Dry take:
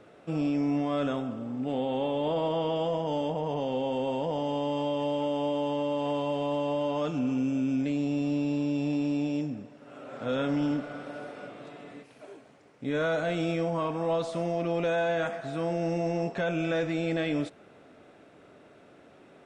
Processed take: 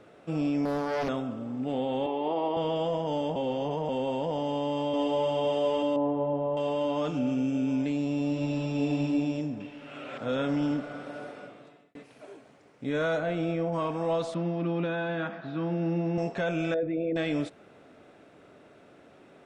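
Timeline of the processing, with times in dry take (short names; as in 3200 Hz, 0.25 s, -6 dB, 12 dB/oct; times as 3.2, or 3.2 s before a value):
0.65–1.09 Doppler distortion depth 0.89 ms
2.06–2.57 speaker cabinet 300–4500 Hz, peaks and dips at 370 Hz +9 dB, 550 Hz -7 dB, 800 Hz +6 dB, 1500 Hz -8 dB, 3500 Hz -7 dB
3.36–3.89 reverse
4.42–5.31 echo throw 0.51 s, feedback 65%, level -1 dB
5.96–6.57 LPF 1000 Hz
7.17–7.67 notch 1000 Hz, Q 5.8
8.29–9.01 reverb throw, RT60 2.4 s, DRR -1 dB
9.6–10.18 bell 2700 Hz +13 dB 1.5 oct
11.27–11.95 fade out
13.17–13.72 LPF 2300 Hz -> 1400 Hz 6 dB/oct
14.34–16.18 speaker cabinet 130–3900 Hz, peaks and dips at 180 Hz +6 dB, 320 Hz +4 dB, 460 Hz -7 dB, 690 Hz -7 dB, 2100 Hz -6 dB, 3000 Hz -3 dB
16.74–17.16 formant sharpening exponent 2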